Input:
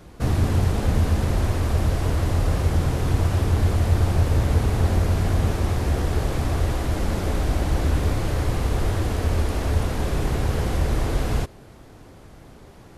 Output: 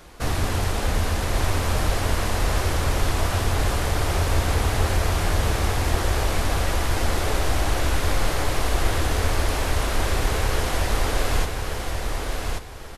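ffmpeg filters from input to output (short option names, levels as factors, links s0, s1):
-filter_complex "[0:a]equalizer=f=140:w=0.33:g=-13.5,asplit=2[s0][s1];[s1]aecho=0:1:1134|2268|3402|4536:0.631|0.164|0.0427|0.0111[s2];[s0][s2]amix=inputs=2:normalize=0,volume=2"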